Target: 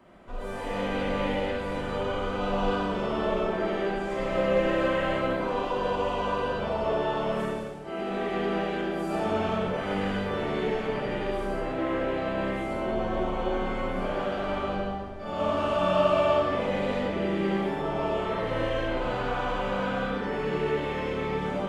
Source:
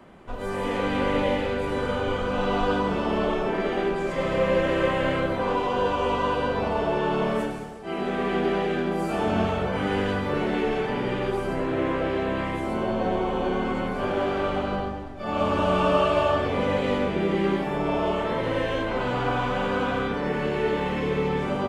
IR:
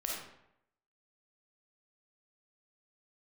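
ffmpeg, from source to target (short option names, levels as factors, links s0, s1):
-filter_complex "[1:a]atrim=start_sample=2205[s0];[0:a][s0]afir=irnorm=-1:irlink=0,volume=0.531"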